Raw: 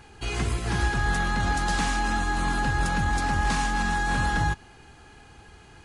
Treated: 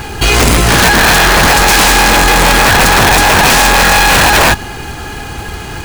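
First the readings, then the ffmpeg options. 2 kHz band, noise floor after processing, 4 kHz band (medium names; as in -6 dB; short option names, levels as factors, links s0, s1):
+19.5 dB, -24 dBFS, +25.0 dB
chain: -af "aeval=exprs='(mod(9.44*val(0)+1,2)-1)/9.44':c=same,apsyclip=31.6,acrusher=bits=3:mode=log:mix=0:aa=0.000001,volume=0.668"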